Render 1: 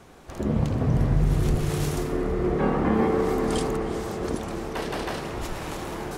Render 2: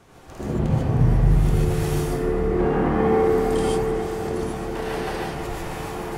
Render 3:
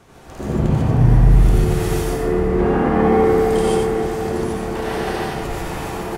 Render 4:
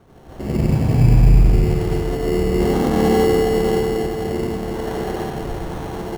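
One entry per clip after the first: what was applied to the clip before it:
gated-style reverb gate 170 ms rising, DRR -5 dB; dynamic bell 5.3 kHz, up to -4 dB, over -44 dBFS, Q 0.95; trim -3.5 dB
delay 91 ms -4 dB; trim +3 dB
low-pass 1.1 kHz 6 dB/octave; in parallel at -3 dB: sample-and-hold 18×; on the sum: trim -4.5 dB

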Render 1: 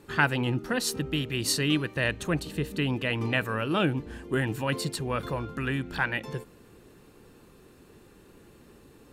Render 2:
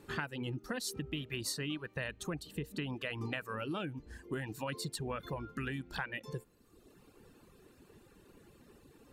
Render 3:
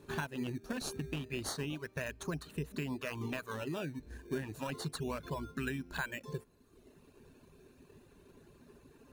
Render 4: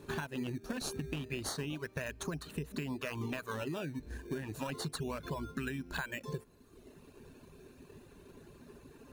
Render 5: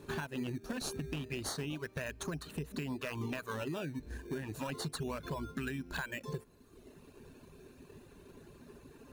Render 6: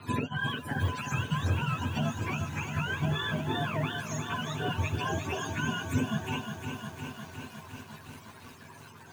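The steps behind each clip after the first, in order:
reverb removal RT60 1.1 s; compression 12:1, threshold -31 dBFS, peak gain reduction 14 dB; trim -3.5 dB
rippled EQ curve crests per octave 1.5, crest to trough 7 dB; in parallel at -4 dB: decimation with a swept rate 15×, swing 100% 0.3 Hz; on the sum: trim -4 dB
compression, threshold -39 dBFS, peak gain reduction 8 dB; trim +4.5 dB
hard clipper -30.5 dBFS, distortion -21 dB
spectrum inverted on a logarithmic axis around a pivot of 630 Hz; pre-echo 47 ms -23 dB; bit-crushed delay 356 ms, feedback 80%, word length 10-bit, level -7.5 dB; trim +8 dB

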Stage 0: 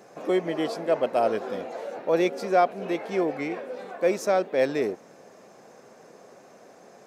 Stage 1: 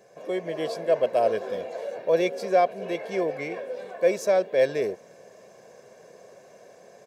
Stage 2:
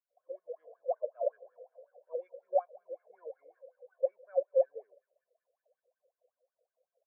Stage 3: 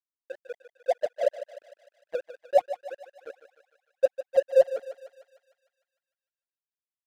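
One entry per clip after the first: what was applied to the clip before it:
peaking EQ 1.2 kHz -12 dB 0.22 oct; level rider gain up to 5 dB; comb 1.8 ms, depth 56%; trim -6 dB
thinning echo 195 ms, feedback 83%, high-pass 610 Hz, level -17 dB; wah-wah 5.4 Hz 490–1500 Hz, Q 12; spectral contrast expander 1.5:1
crossover distortion -43 dBFS; thinning echo 151 ms, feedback 63%, high-pass 570 Hz, level -10.5 dB; trim +8.5 dB

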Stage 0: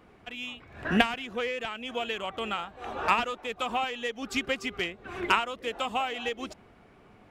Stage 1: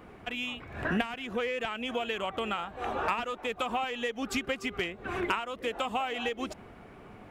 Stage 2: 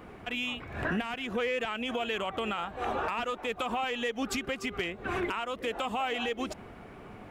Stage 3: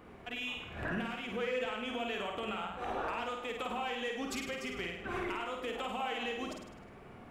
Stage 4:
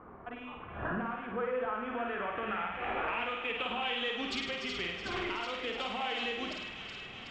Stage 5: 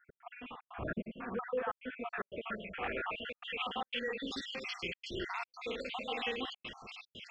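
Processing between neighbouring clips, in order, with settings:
peaking EQ 4.8 kHz -4.5 dB 1.4 oct; compression 3:1, threshold -37 dBFS, peak gain reduction 15 dB; trim +6.5 dB
peak limiter -25 dBFS, peak gain reduction 9.5 dB; trim +2.5 dB
flutter echo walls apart 8.8 m, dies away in 0.75 s; trim -7 dB
feedback echo behind a high-pass 372 ms, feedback 75%, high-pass 1.8 kHz, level -6 dB; low-pass sweep 1.2 kHz -> 4.3 kHz, 1.69–4.49 s
random holes in the spectrogram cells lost 57%; trance gate "x.xxxx.xxxxxxxxx" 149 bpm -60 dB

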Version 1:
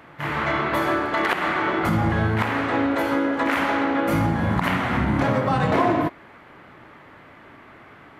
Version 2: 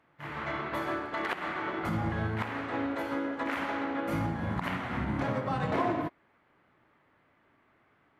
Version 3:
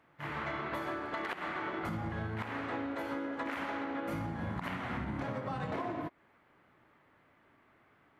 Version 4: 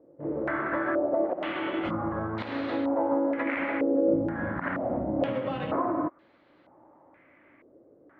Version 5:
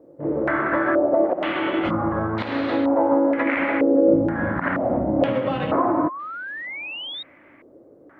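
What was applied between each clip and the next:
treble shelf 10 kHz -5.5 dB; upward expansion 1.5:1, over -41 dBFS; trim -8.5 dB
compression, threshold -35 dBFS, peak gain reduction 10.5 dB; trim +1 dB
small resonant body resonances 310/540 Hz, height 12 dB, ringing for 30 ms; step-sequenced low-pass 2.1 Hz 470–4100 Hz
painted sound rise, 5.82–7.23 s, 760–3800 Hz -40 dBFS; trim +7.5 dB

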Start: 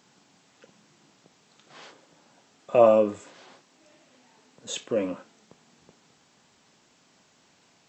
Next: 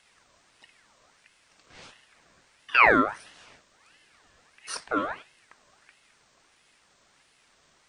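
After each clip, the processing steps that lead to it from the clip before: ring modulator with a swept carrier 1.6 kHz, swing 50%, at 1.5 Hz; trim +1.5 dB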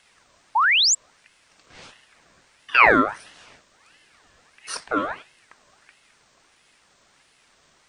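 painted sound rise, 0.55–0.95 s, 820–7900 Hz -21 dBFS; trim +3.5 dB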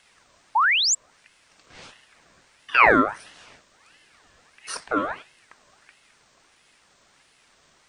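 dynamic bell 3.9 kHz, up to -4 dB, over -35 dBFS, Q 0.83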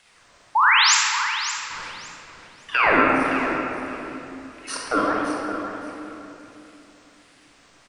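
peak limiter -11 dBFS, peak gain reduction 8.5 dB; feedback delay 567 ms, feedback 20%, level -11 dB; reverberation RT60 2.8 s, pre-delay 29 ms, DRR -2 dB; trim +1 dB

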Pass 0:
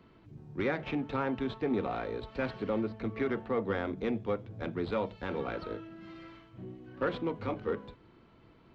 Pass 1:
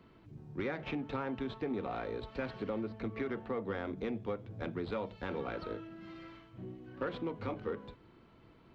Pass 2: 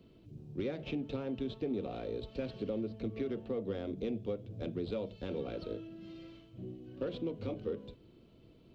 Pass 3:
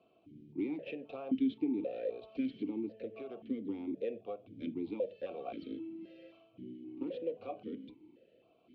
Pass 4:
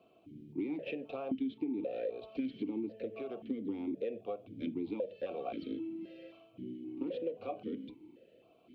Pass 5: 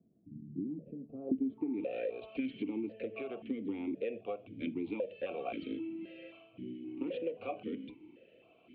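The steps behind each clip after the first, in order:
compression 3:1, threshold -33 dBFS, peak gain reduction 6 dB; trim -1 dB
high-order bell 1.3 kHz -13 dB; trim +1 dB
stepped vowel filter 3.8 Hz; trim +9.5 dB
compression 5:1, threshold -36 dBFS, peak gain reduction 9 dB; trim +3.5 dB
low-pass sweep 200 Hz -> 2.6 kHz, 1.11–1.83 s

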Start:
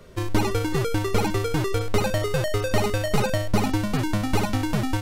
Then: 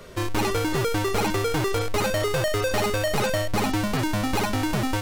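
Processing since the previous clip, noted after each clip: bass shelf 360 Hz -7 dB; saturation -27 dBFS, distortion -9 dB; trim +7.5 dB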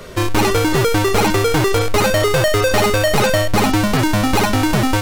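on a send at -12.5 dB: steep high-pass 1.1 kHz + reverberation RT60 0.40 s, pre-delay 3 ms; on the sum: trim +9 dB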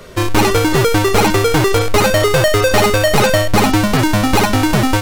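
upward expansion 1.5:1, over -23 dBFS; trim +3.5 dB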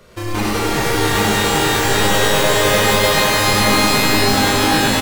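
delay 103 ms -3.5 dB; pitch-shifted reverb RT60 3.8 s, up +12 st, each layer -2 dB, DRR -3.5 dB; trim -11 dB

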